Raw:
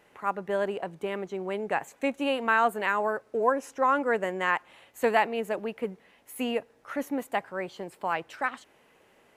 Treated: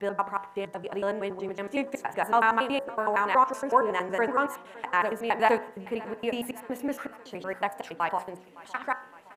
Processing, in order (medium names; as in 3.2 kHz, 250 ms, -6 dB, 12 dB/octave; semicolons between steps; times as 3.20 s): slices played last to first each 93 ms, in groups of 6; dynamic bell 970 Hz, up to +7 dB, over -42 dBFS, Q 4.8; de-hum 61.29 Hz, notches 32; on a send: feedback delay 562 ms, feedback 60%, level -20.5 dB